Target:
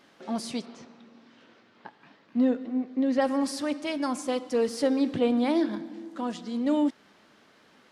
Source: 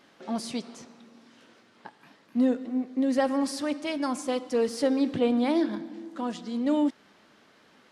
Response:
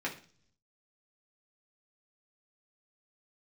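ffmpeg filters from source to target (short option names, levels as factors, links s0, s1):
-filter_complex "[0:a]asplit=3[s0][s1][s2];[s0]afade=t=out:st=0.65:d=0.02[s3];[s1]lowpass=4500,afade=t=in:st=0.65:d=0.02,afade=t=out:st=3.2:d=0.02[s4];[s2]afade=t=in:st=3.2:d=0.02[s5];[s3][s4][s5]amix=inputs=3:normalize=0"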